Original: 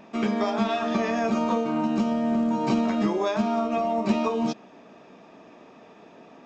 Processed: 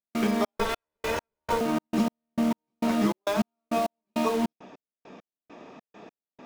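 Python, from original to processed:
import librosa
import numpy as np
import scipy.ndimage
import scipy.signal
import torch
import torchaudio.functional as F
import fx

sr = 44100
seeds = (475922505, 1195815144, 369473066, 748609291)

p1 = fx.lower_of_two(x, sr, delay_ms=2.0, at=(0.57, 1.61))
p2 = (np.mod(10.0 ** (27.0 / 20.0) * p1 + 1.0, 2.0) - 1.0) / 10.0 ** (27.0 / 20.0)
p3 = p1 + (p2 * 10.0 ** (-9.0 / 20.0))
y = fx.step_gate(p3, sr, bpm=101, pattern='.xx.x..x.', floor_db=-60.0, edge_ms=4.5)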